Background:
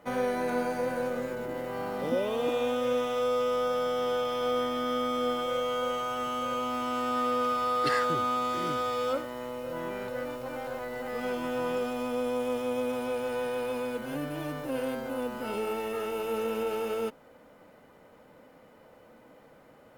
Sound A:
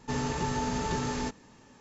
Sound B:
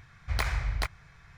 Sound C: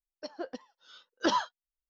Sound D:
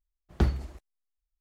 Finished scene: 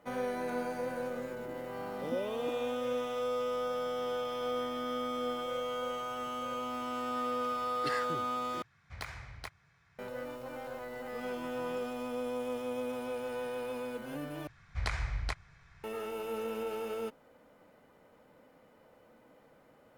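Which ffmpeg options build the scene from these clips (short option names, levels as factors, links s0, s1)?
-filter_complex "[2:a]asplit=2[s0][s1];[0:a]volume=0.501[s2];[s0]highpass=96[s3];[s1]lowpass=f=9600:w=0.5412,lowpass=f=9600:w=1.3066[s4];[s2]asplit=3[s5][s6][s7];[s5]atrim=end=8.624[s8];[s3]atrim=end=1.37,asetpts=PTS-STARTPTS,volume=0.282[s9];[s6]atrim=start=9.986:end=14.474[s10];[s4]atrim=end=1.37,asetpts=PTS-STARTPTS,volume=0.562[s11];[s7]atrim=start=15.836[s12];[s8][s9]acrossfade=d=0.004:c1=hsin:c2=hsin[s13];[s13][s10]acrossfade=d=0.004:c1=hsin:c2=hsin[s14];[s14][s11]acrossfade=d=0.004:c1=hsin:c2=hsin[s15];[s15][s12]acrossfade=d=0.004:c1=hsin:c2=hsin"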